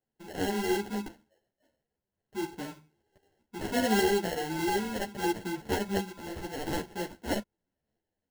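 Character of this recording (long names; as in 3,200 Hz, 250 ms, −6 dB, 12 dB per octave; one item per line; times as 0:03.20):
phaser sweep stages 6, 0.77 Hz, lowest notch 640–4,000 Hz
aliases and images of a low sample rate 1,200 Hz, jitter 0%
tremolo saw up 0.5 Hz, depth 40%
a shimmering, thickened sound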